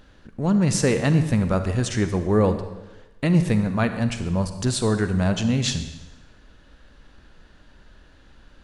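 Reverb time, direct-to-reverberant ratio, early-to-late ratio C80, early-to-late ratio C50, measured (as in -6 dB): 1.1 s, 9.0 dB, 11.0 dB, 9.5 dB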